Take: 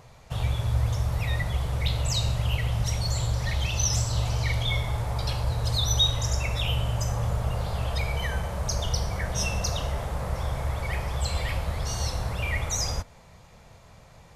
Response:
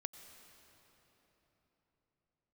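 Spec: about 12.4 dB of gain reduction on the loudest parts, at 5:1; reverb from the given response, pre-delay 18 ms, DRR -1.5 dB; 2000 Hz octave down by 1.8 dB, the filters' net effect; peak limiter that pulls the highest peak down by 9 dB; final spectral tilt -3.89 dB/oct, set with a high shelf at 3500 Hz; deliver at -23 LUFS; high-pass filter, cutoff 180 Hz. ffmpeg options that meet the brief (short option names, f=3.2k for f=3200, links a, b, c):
-filter_complex "[0:a]highpass=180,equalizer=f=2k:t=o:g=-4,highshelf=f=3.5k:g=5.5,acompressor=threshold=-31dB:ratio=5,alimiter=level_in=2.5dB:limit=-24dB:level=0:latency=1,volume=-2.5dB,asplit=2[a][b];[1:a]atrim=start_sample=2205,adelay=18[c];[b][c]afir=irnorm=-1:irlink=0,volume=4.5dB[d];[a][d]amix=inputs=2:normalize=0,volume=8.5dB"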